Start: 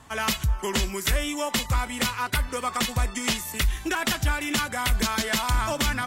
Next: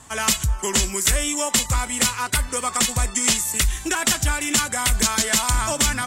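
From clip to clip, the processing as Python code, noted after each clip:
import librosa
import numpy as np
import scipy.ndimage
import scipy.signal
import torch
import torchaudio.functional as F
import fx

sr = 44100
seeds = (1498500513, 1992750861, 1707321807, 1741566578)

y = fx.peak_eq(x, sr, hz=7900.0, db=12.5, octaves=0.94)
y = F.gain(torch.from_numpy(y), 2.0).numpy()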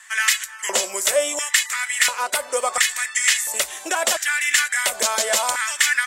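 y = fx.filter_lfo_highpass(x, sr, shape='square', hz=0.72, low_hz=570.0, high_hz=1800.0, q=4.8)
y = F.gain(torch.from_numpy(y), -1.0).numpy()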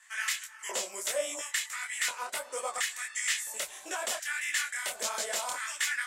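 y = fx.detune_double(x, sr, cents=54)
y = F.gain(torch.from_numpy(y), -9.0).numpy()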